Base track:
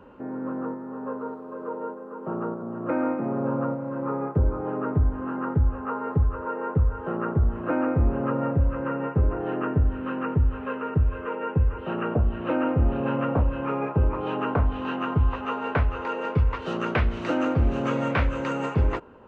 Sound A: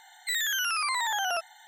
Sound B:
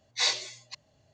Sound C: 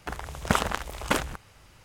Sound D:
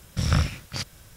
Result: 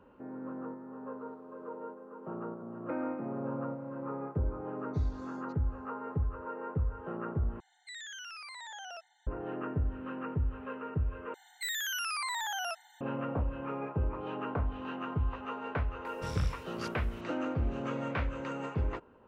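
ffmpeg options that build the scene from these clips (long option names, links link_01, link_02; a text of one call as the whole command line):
ffmpeg -i bed.wav -i cue0.wav -i cue1.wav -i cue2.wav -i cue3.wav -filter_complex "[1:a]asplit=2[link_01][link_02];[0:a]volume=-10dB[link_03];[2:a]acompressor=threshold=-49dB:ratio=6:attack=3.2:release=140:knee=1:detection=peak[link_04];[link_01]highpass=180,equalizer=frequency=320:width_type=q:width=4:gain=-8,equalizer=frequency=530:width_type=q:width=4:gain=6,equalizer=frequency=1100:width_type=q:width=4:gain=-8,lowpass=frequency=7800:width=0.5412,lowpass=frequency=7800:width=1.3066[link_05];[link_02]highpass=frequency=610:width=0.5412,highpass=frequency=610:width=1.3066[link_06];[link_03]asplit=3[link_07][link_08][link_09];[link_07]atrim=end=7.604[link_10];[link_05]atrim=end=1.67,asetpts=PTS-STARTPTS,volume=-15.5dB[link_11];[link_08]atrim=start=9.266:end=11.344[link_12];[link_06]atrim=end=1.67,asetpts=PTS-STARTPTS,volume=-6.5dB[link_13];[link_09]atrim=start=13.006[link_14];[link_04]atrim=end=1.13,asetpts=PTS-STARTPTS,volume=-15dB,afade=type=in:duration=0.004:curve=hsin,afade=type=out:start_time=1.126:duration=0.004:curve=hsin,adelay=4780[link_15];[4:a]atrim=end=1.16,asetpts=PTS-STARTPTS,volume=-15dB,afade=type=in:duration=0.004:curve=hsin,afade=type=out:start_time=1.156:duration=0.004:curve=hsin,adelay=16050[link_16];[link_10][link_11]acrossfade=duration=0.004:curve1=hsin:curve2=hsin[link_17];[link_17][link_12]acrossfade=duration=0.004:curve1=hsin:curve2=hsin[link_18];[link_18][link_13]acrossfade=duration=0.004:curve1=hsin:curve2=hsin[link_19];[link_19][link_14]acrossfade=duration=0.004:curve1=hsin:curve2=hsin[link_20];[link_20][link_15][link_16]amix=inputs=3:normalize=0" out.wav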